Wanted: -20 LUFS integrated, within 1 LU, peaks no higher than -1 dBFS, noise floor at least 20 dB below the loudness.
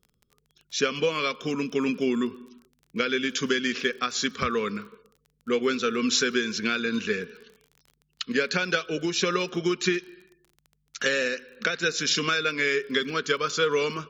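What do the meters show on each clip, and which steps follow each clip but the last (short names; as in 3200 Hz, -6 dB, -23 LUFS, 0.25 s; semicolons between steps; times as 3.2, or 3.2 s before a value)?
ticks 29/s; loudness -26.0 LUFS; peak -9.0 dBFS; loudness target -20.0 LUFS
-> de-click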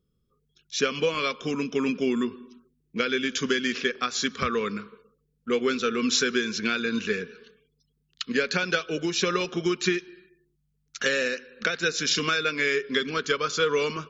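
ticks 0/s; loudness -26.0 LUFS; peak -9.0 dBFS; loudness target -20.0 LUFS
-> gain +6 dB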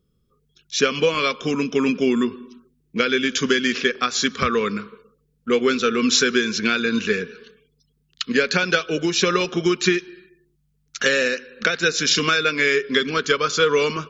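loudness -20.0 LUFS; peak -3.0 dBFS; noise floor -67 dBFS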